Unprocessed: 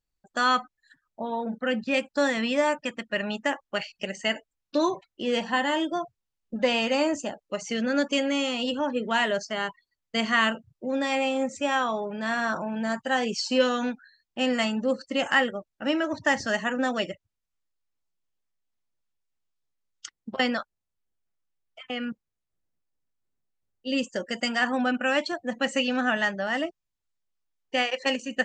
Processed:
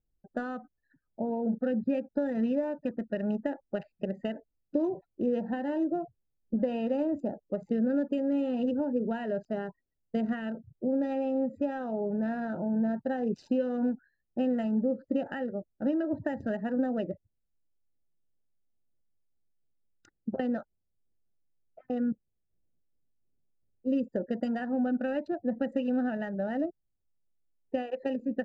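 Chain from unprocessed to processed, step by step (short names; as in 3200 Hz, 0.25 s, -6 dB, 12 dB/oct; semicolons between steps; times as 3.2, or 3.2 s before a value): Wiener smoothing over 15 samples; compressor, threshold -28 dBFS, peak gain reduction 11.5 dB; running mean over 40 samples; gain +5.5 dB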